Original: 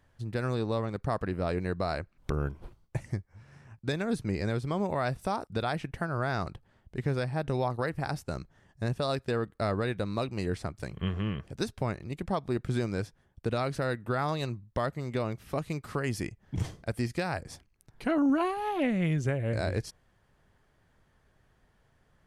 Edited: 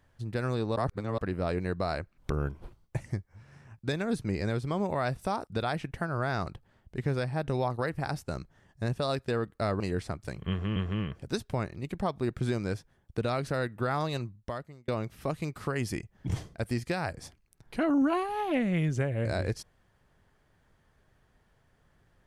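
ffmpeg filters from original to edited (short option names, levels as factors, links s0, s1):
-filter_complex "[0:a]asplit=6[s0][s1][s2][s3][s4][s5];[s0]atrim=end=0.762[s6];[s1]atrim=start=0.758:end=1.182,asetpts=PTS-STARTPTS,areverse[s7];[s2]atrim=start=1.178:end=9.802[s8];[s3]atrim=start=10.348:end=11.312[s9];[s4]atrim=start=11.038:end=15.16,asetpts=PTS-STARTPTS,afade=t=out:st=3.412:d=0.71[s10];[s5]atrim=start=15.16,asetpts=PTS-STARTPTS,afade=t=in:d=0.004:c=hsin[s11];[s6][s7]acrossfade=d=0.004:c1=hsin:c2=hsin[s12];[s12][s8]acrossfade=d=0.004:c1=hsin:c2=hsin[s13];[s13][s9]acrossfade=d=0.004:c1=hsin:c2=hsin[s14];[s10][s11]concat=n=2:v=0:a=1[s15];[s14][s15]acrossfade=d=0.004:c1=hsin:c2=hsin"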